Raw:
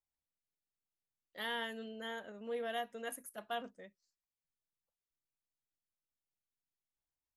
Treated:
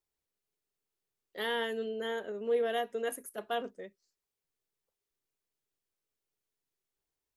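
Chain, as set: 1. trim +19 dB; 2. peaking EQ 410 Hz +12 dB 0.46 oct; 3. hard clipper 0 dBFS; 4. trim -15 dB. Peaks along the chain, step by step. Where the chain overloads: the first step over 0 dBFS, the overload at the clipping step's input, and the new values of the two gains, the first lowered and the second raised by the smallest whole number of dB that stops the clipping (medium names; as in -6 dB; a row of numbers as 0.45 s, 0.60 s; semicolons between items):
-8.5 dBFS, -5.5 dBFS, -5.5 dBFS, -20.5 dBFS; nothing clips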